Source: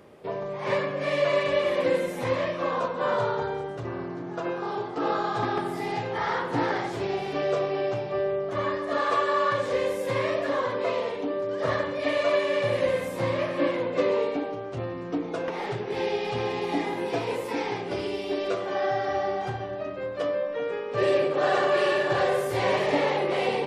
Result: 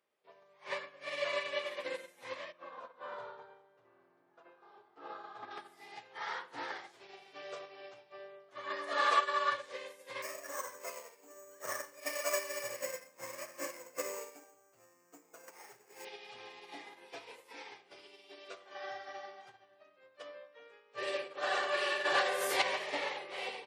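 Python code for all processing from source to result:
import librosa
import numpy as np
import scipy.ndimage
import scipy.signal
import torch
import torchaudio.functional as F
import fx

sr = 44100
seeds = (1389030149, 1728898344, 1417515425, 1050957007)

y = fx.chain(x, sr, fx.lowpass(hz=1400.0, slope=6),
    fx.echo_split(split_hz=310.0, low_ms=121, high_ms=235, feedback_pct=52, wet_db=-14.5), at=(2.52, 5.51))
y = fx.chain(y, sr, fx.highpass(hz=170.0, slope=12),
    fx.env_flatten(amount_pct=70), at=(8.7, 9.19))
y = fx.chain(y, sr, fx.lowpass(hz=2700.0, slope=24),
    fx.resample_bad(factor=6, down='none', up='hold'), at=(10.22, 16.05))
y = fx.chain(y, sr, fx.highpass(hz=150.0, slope=24),
    fx.env_flatten(amount_pct=100), at=(22.05, 22.62))
y = fx.highpass(y, sr, hz=810.0, slope=6)
y = fx.tilt_shelf(y, sr, db=-4.0, hz=1200.0)
y = fx.upward_expand(y, sr, threshold_db=-40.0, expansion=2.5)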